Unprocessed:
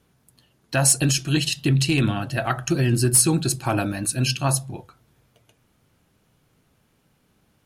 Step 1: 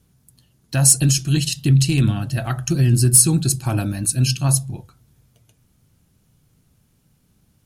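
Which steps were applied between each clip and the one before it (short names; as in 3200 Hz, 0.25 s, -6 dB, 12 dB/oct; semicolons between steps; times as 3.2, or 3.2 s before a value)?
tone controls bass +12 dB, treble +10 dB; gain -5 dB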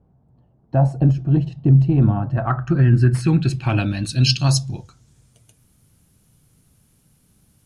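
low-pass sweep 760 Hz -> 11000 Hz, 1.92–5.6; gain +1.5 dB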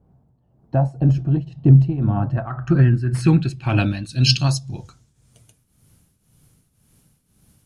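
tremolo triangle 1.9 Hz, depth 80%; gain +3 dB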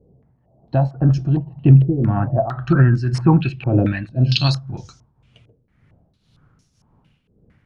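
stepped low-pass 4.4 Hz 470–5700 Hz; gain +1 dB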